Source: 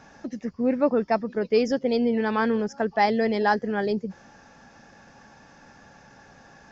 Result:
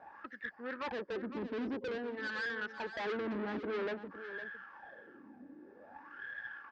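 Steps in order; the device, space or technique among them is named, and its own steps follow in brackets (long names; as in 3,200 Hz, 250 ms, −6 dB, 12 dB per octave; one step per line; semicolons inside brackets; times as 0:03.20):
wah-wah guitar rig (LFO wah 0.51 Hz 260–1,700 Hz, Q 7.6; tube saturation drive 48 dB, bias 0.6; loudspeaker in its box 87–4,600 Hz, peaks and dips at 140 Hz −8 dB, 330 Hz +5 dB, 700 Hz −7 dB, 1,700 Hz +6 dB)
0:00.92–0:02.56: parametric band 1,400 Hz −4.5 dB 1.7 octaves
single-tap delay 508 ms −11.5 dB
level +12.5 dB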